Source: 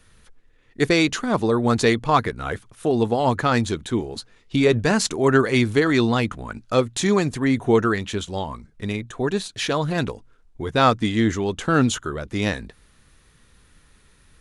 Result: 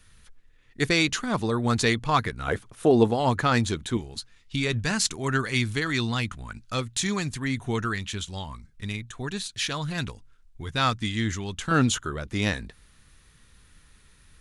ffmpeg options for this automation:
-af "asetnsamples=n=441:p=0,asendcmd='2.48 equalizer g 2;3.11 equalizer g -5;3.97 equalizer g -14.5;11.71 equalizer g -5.5',equalizer=f=470:t=o:w=2.5:g=-8"

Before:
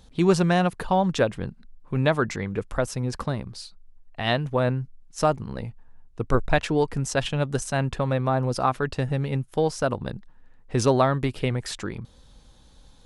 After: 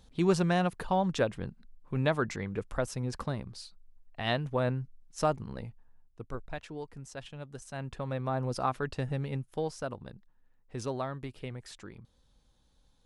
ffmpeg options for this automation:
-af "volume=4.5dB,afade=t=out:st=5.43:d=0.95:silence=0.251189,afade=t=in:st=7.56:d=0.93:silence=0.281838,afade=t=out:st=9.18:d=0.94:silence=0.421697"

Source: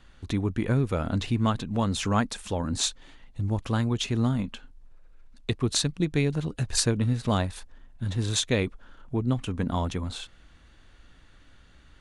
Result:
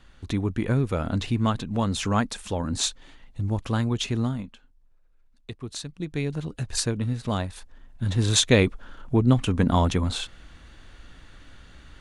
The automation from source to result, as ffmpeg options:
-af "volume=18dB,afade=t=out:st=4.11:d=0.43:silence=0.281838,afade=t=in:st=5.86:d=0.48:silence=0.398107,afade=t=in:st=7.52:d=1.02:silence=0.354813"

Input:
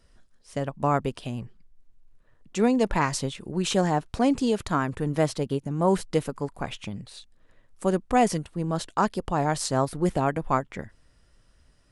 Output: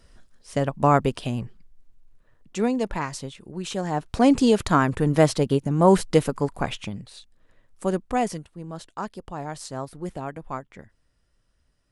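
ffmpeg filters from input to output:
-af "volume=17dB,afade=t=out:st=1.21:d=1.88:silence=0.281838,afade=t=in:st=3.84:d=0.5:silence=0.266073,afade=t=out:st=6.59:d=0.46:silence=0.473151,afade=t=out:st=7.95:d=0.57:silence=0.398107"

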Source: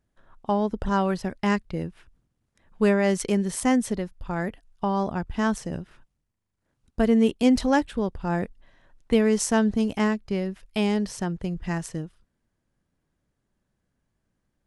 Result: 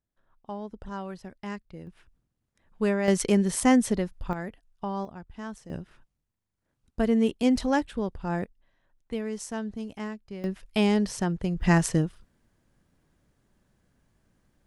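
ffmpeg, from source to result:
-af "asetnsamples=n=441:p=0,asendcmd='1.87 volume volume -5dB;3.08 volume volume 1.5dB;4.33 volume volume -7dB;5.05 volume volume -14dB;5.7 volume volume -3.5dB;8.44 volume volume -12dB;10.44 volume volume 1dB;11.61 volume volume 8dB',volume=-13dB"

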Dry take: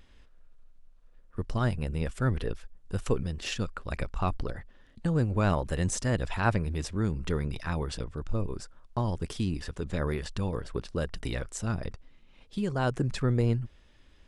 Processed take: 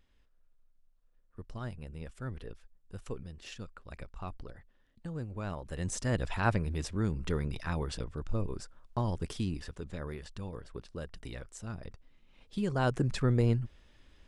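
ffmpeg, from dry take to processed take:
-af "volume=6.5dB,afade=t=in:st=5.61:d=0.54:silence=0.316228,afade=t=out:st=9.29:d=0.71:silence=0.421697,afade=t=in:st=11.82:d=0.94:silence=0.354813"

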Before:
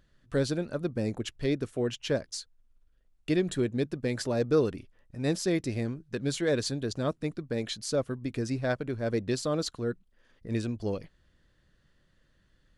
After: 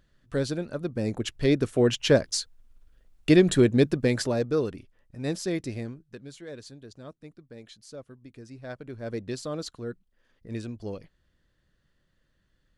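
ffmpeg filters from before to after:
-af "volume=19dB,afade=t=in:st=0.89:d=1.07:silence=0.354813,afade=t=out:st=3.88:d=0.61:silence=0.298538,afade=t=out:st=5.68:d=0.6:silence=0.237137,afade=t=in:st=8.52:d=0.61:silence=0.316228"

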